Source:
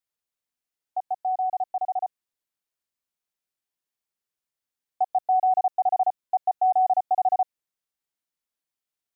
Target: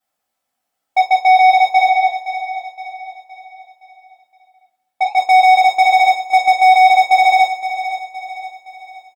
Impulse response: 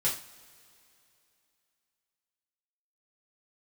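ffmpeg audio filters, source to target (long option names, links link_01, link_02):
-filter_complex "[0:a]equalizer=frequency=770:width=0.81:gain=13,acompressor=threshold=-9dB:ratio=4,asoftclip=type=tanh:threshold=-17.5dB,asettb=1/sr,asplit=3[link_01][link_02][link_03];[link_01]atrim=end=1.884[link_04];[link_02]atrim=start=1.88:end=5.17,asetpts=PTS-STARTPTS,afade=type=in:duration=0.004:curve=qsin,afade=type=out:start_time=3.286:duration=0.004:curve=qsin,flanger=delay=4.1:depth=3.5:regen=-83:speed=1.5:shape=triangular[link_05];[link_03]atrim=start=5.166[link_06];[link_04][link_05]acrossfade=duration=0.004:curve1=hsin:curve2=qsin[link_07];[link_07][link_06]acrossfade=duration=0.004:curve1=qsin:curve2=hsin,volume=20.5dB,asoftclip=hard,volume=-20.5dB,aecho=1:1:517|1034|1551|2068|2585:0.266|0.12|0.0539|0.0242|0.0109[link_08];[1:a]atrim=start_sample=2205,asetrate=66150,aresample=44100[link_09];[link_08][link_09]afir=irnorm=-1:irlink=0,volume=6.5dB"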